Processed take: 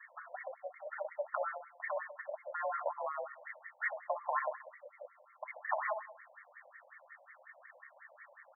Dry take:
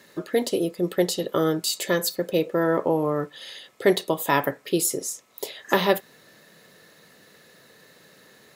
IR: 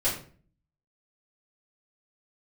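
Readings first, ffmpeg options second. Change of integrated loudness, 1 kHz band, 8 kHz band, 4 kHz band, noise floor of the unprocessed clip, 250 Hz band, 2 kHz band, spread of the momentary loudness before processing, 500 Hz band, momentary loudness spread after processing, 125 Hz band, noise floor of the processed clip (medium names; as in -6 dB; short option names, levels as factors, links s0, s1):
-15.5 dB, -9.0 dB, under -40 dB, under -40 dB, -55 dBFS, under -40 dB, -10.0 dB, 10 LU, -17.0 dB, 20 LU, under -40 dB, -64 dBFS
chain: -filter_complex "[0:a]acompressor=threshold=0.0398:ratio=5,flanger=delay=9.1:depth=3.8:regen=82:speed=0.61:shape=triangular,asplit=2[s0][s1];[s1]adelay=64,lowpass=f=2500:p=1,volume=0.398,asplit=2[s2][s3];[s3]adelay=64,lowpass=f=2500:p=1,volume=0.52,asplit=2[s4][s5];[s5]adelay=64,lowpass=f=2500:p=1,volume=0.52,asplit=2[s6][s7];[s7]adelay=64,lowpass=f=2500:p=1,volume=0.52,asplit=2[s8][s9];[s9]adelay=64,lowpass=f=2500:p=1,volume=0.52,asplit=2[s10][s11];[s11]adelay=64,lowpass=f=2500:p=1,volume=0.52[s12];[s0][s2][s4][s6][s8][s10][s12]amix=inputs=7:normalize=0,crystalizer=i=7.5:c=0,highpass=f=390:t=q:w=0.5412,highpass=f=390:t=q:w=1.307,lowpass=f=3300:t=q:w=0.5176,lowpass=f=3300:t=q:w=0.7071,lowpass=f=3300:t=q:w=1.932,afreqshift=66,afftfilt=real='re*between(b*sr/1024,670*pow(1600/670,0.5+0.5*sin(2*PI*5.5*pts/sr))/1.41,670*pow(1600/670,0.5+0.5*sin(2*PI*5.5*pts/sr))*1.41)':imag='im*between(b*sr/1024,670*pow(1600/670,0.5+0.5*sin(2*PI*5.5*pts/sr))/1.41,670*pow(1600/670,0.5+0.5*sin(2*PI*5.5*pts/sr))*1.41)':win_size=1024:overlap=0.75,volume=1.33"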